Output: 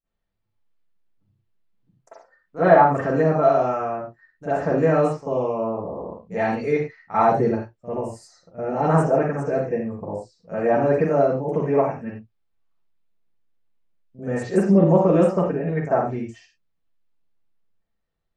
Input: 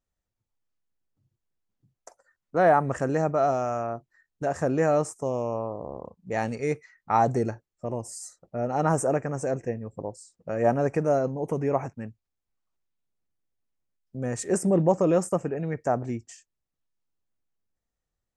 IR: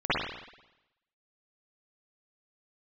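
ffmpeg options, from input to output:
-filter_complex "[1:a]atrim=start_sample=2205,afade=t=out:st=0.23:d=0.01,atrim=end_sample=10584,asetrate=52920,aresample=44100[a];[0:a][a]afir=irnorm=-1:irlink=0,volume=-7.5dB"

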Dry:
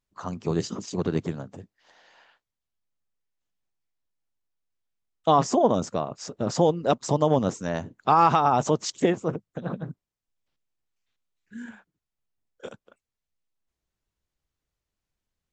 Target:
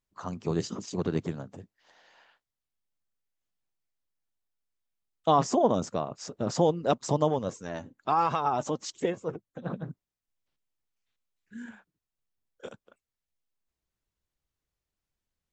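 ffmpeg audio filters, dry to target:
-filter_complex "[0:a]asplit=3[a][b][c];[a]afade=t=out:st=7.29:d=0.02[d];[b]flanger=delay=1.8:depth=2:regen=45:speed=1.2:shape=sinusoidal,afade=t=in:st=7.29:d=0.02,afade=t=out:st=9.64:d=0.02[e];[c]afade=t=in:st=9.64:d=0.02[f];[d][e][f]amix=inputs=3:normalize=0,volume=-3dB"

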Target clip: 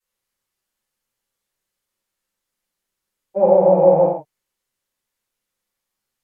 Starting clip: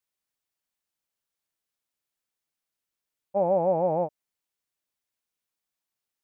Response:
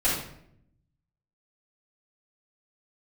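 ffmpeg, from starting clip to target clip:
-filter_complex "[1:a]atrim=start_sample=2205,afade=t=out:st=0.16:d=0.01,atrim=end_sample=7497,asetrate=31752,aresample=44100[a];[0:a][a]afir=irnorm=-1:irlink=0,volume=-6dB"

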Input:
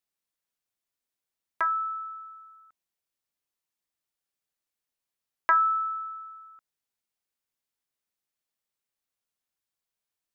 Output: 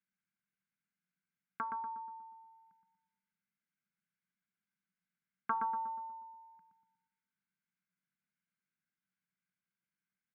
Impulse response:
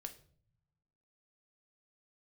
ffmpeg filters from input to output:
-filter_complex "[0:a]asplit=3[a][b][c];[a]bandpass=f=270:t=q:w=8,volume=0dB[d];[b]bandpass=f=2.29k:t=q:w=8,volume=-6dB[e];[c]bandpass=f=3.01k:t=q:w=8,volume=-9dB[f];[d][e][f]amix=inputs=3:normalize=0,highshelf=f=2.3k:g=-5.5,bandreject=f=384.9:t=h:w=4,bandreject=f=769.8:t=h:w=4,bandreject=f=1.1547k:t=h:w=4,bandreject=f=1.5396k:t=h:w=4,asetrate=30296,aresample=44100,atempo=1.45565,asplit=2[g][h];[h]adelay=120,lowpass=f=1.3k:p=1,volume=-4dB,asplit=2[i][j];[j]adelay=120,lowpass=f=1.3k:p=1,volume=0.53,asplit=2[k][l];[l]adelay=120,lowpass=f=1.3k:p=1,volume=0.53,asplit=2[m][n];[n]adelay=120,lowpass=f=1.3k:p=1,volume=0.53,asplit=2[o][p];[p]adelay=120,lowpass=f=1.3k:p=1,volume=0.53,asplit=2[q][r];[r]adelay=120,lowpass=f=1.3k:p=1,volume=0.53,asplit=2[s][t];[t]adelay=120,lowpass=f=1.3k:p=1,volume=0.53[u];[g][i][k][m][o][q][s][u]amix=inputs=8:normalize=0,asplit=2[v][w];[1:a]atrim=start_sample=2205,asetrate=28224,aresample=44100[x];[w][x]afir=irnorm=-1:irlink=0,volume=-12.5dB[y];[v][y]amix=inputs=2:normalize=0,volume=12dB"

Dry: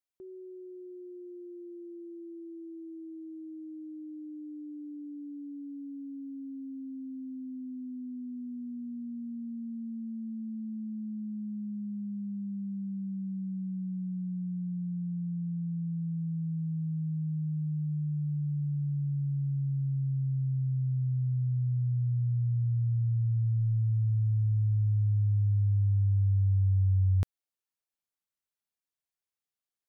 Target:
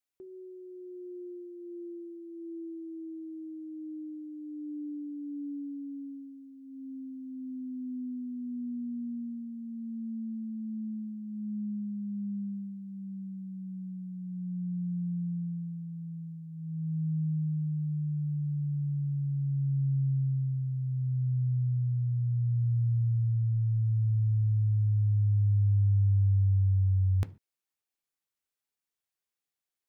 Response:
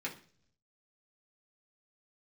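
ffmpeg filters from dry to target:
-filter_complex "[0:a]asplit=2[a][b];[1:a]atrim=start_sample=2205,atrim=end_sample=6615[c];[b][c]afir=irnorm=-1:irlink=0,volume=-10dB[d];[a][d]amix=inputs=2:normalize=0"

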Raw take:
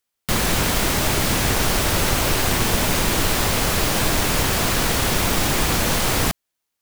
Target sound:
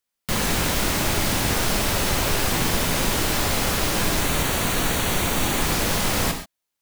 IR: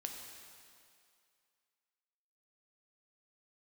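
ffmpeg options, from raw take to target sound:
-filter_complex "[0:a]asettb=1/sr,asplit=3[a][b][c];[a]atrim=end=4.204[d];[b]atrim=start=4.2:end=5.62,asetpts=PTS-STARTPTS,afade=t=in:d=0.004:c=qsin,afade=t=out:st=1.416:d=0.004:c=qsin,bandreject=f=5.1k:w=5.6[e];[c]atrim=start=5.616[f];[d][e]acrossfade=d=0.004:c1=hsin:c2=qsin[g];[g][f]acrossfade=d=0.004:c1=qsin:c2=hsin[h];[1:a]atrim=start_sample=2205,afade=t=out:st=0.19:d=0.01,atrim=end_sample=8820[i];[h][i]afir=irnorm=-1:irlink=0"

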